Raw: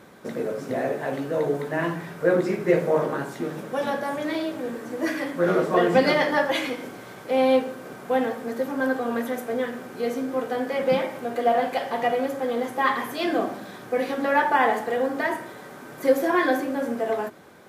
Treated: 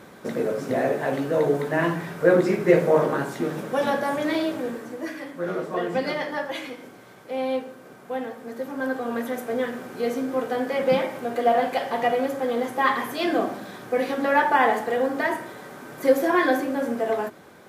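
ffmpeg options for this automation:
-af "volume=11dB,afade=t=out:st=4.52:d=0.56:silence=0.316228,afade=t=in:st=8.35:d=1.33:silence=0.398107"

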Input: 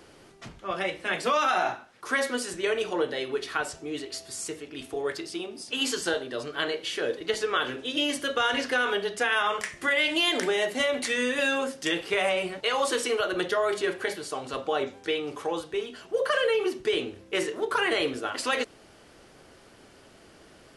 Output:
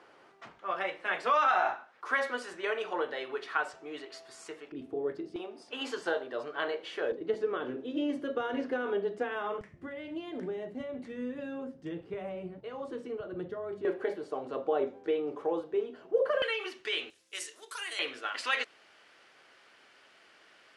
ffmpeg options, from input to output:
-af "asetnsamples=n=441:p=0,asendcmd='4.72 bandpass f 260;5.36 bandpass f 810;7.12 bandpass f 300;9.61 bandpass f 120;13.85 bandpass f 430;16.42 bandpass f 2300;17.1 bandpass f 7800;17.99 bandpass f 2100',bandpass=f=1.1k:t=q:w=0.92:csg=0"

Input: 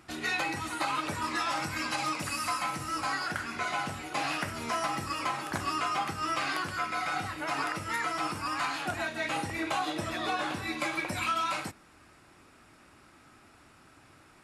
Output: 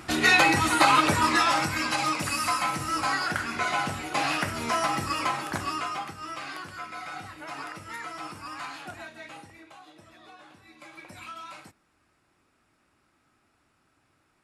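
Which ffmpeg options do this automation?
-af "volume=19.5dB,afade=t=out:st=0.96:d=0.83:silence=0.446684,afade=t=out:st=5.17:d=0.99:silence=0.281838,afade=t=out:st=8.73:d=0.94:silence=0.223872,afade=t=in:st=10.73:d=0.41:silence=0.421697"

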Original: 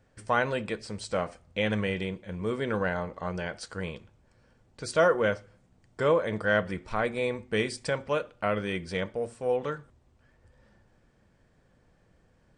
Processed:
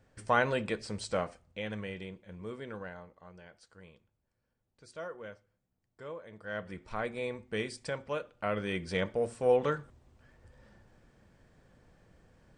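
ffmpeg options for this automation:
-af "volume=20.5dB,afade=t=out:st=1.02:d=0.58:silence=0.334965,afade=t=out:st=2.41:d=0.78:silence=0.354813,afade=t=in:st=6.38:d=0.53:silence=0.237137,afade=t=in:st=8.31:d=1.12:silence=0.354813"

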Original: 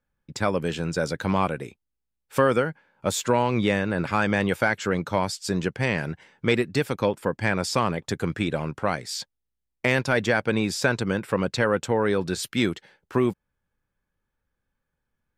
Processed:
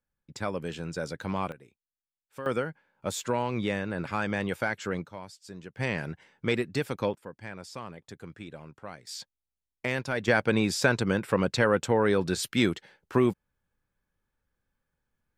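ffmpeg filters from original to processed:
-af "asetnsamples=n=441:p=0,asendcmd='1.52 volume volume -19dB;2.46 volume volume -7dB;5.06 volume volume -18dB;5.77 volume volume -5.5dB;7.15 volume volume -17dB;9.07 volume volume -8dB;10.28 volume volume -1dB',volume=-8dB"

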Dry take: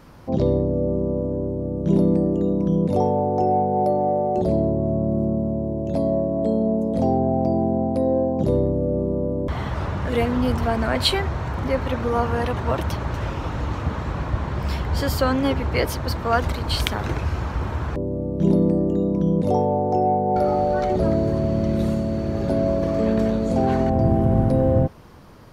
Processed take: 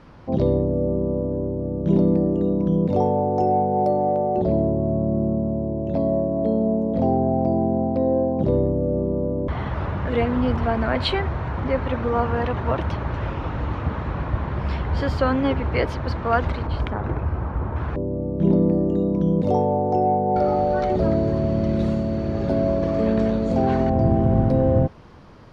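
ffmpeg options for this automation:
-af "asetnsamples=n=441:p=0,asendcmd='3.32 lowpass f 8000;4.16 lowpass f 3000;16.67 lowpass f 1300;17.76 lowpass f 2800;18.72 lowpass f 5000',lowpass=4.1k"

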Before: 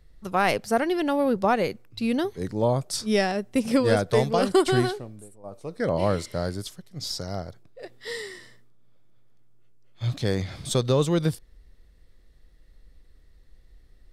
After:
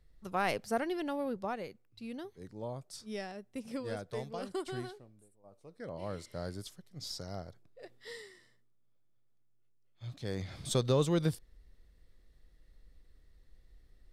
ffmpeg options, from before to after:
-af "volume=8.5dB,afade=t=out:st=0.77:d=0.92:silence=0.375837,afade=t=in:st=6.01:d=0.57:silence=0.398107,afade=t=out:st=7.93:d=0.4:silence=0.473151,afade=t=in:st=10.17:d=0.49:silence=0.316228"

